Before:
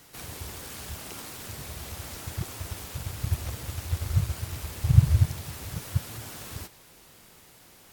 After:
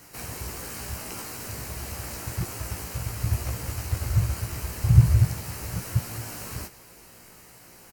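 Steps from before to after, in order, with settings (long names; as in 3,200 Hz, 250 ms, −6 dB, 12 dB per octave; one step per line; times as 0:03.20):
parametric band 3,500 Hz −14.5 dB 0.23 octaves
double-tracking delay 17 ms −5 dB
in parallel at −8 dB: soft clipping −19 dBFS, distortion −7 dB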